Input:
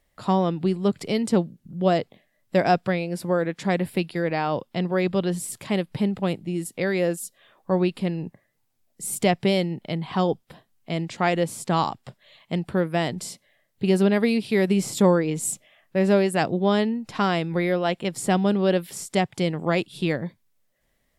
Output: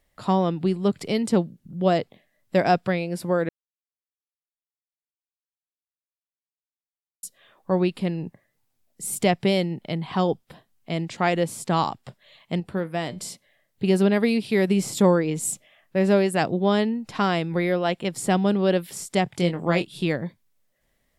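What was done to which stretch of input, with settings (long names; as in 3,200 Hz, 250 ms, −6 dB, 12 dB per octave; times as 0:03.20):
0:03.49–0:07.23: silence
0:12.60–0:13.21: tuned comb filter 99 Hz, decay 0.25 s, mix 50%
0:19.24–0:20.03: double-tracking delay 23 ms −8 dB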